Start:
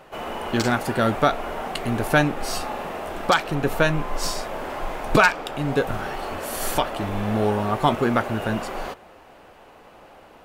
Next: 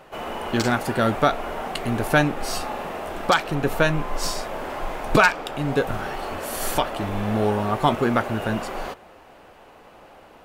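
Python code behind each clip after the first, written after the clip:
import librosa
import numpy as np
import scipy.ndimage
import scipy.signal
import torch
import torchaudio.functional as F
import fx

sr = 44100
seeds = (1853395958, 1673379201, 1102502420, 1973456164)

y = x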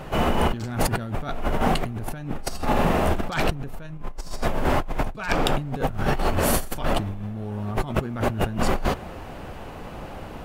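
y = fx.bass_treble(x, sr, bass_db=14, treble_db=1)
y = fx.over_compress(y, sr, threshold_db=-26.0, ratio=-1.0)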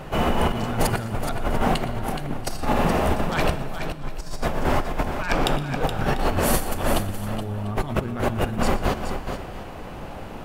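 y = fx.echo_multitap(x, sr, ms=(117, 422, 694), db=(-17.5, -8.0, -18.0))
y = fx.rev_schroeder(y, sr, rt60_s=1.8, comb_ms=38, drr_db=14.0)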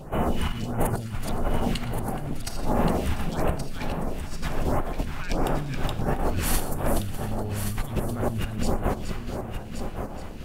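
y = fx.phaser_stages(x, sr, stages=2, low_hz=470.0, high_hz=4700.0, hz=1.5, feedback_pct=20)
y = y + 10.0 ** (-7.5 / 20.0) * np.pad(y, (int(1125 * sr / 1000.0), 0))[:len(y)]
y = y * librosa.db_to_amplitude(-3.0)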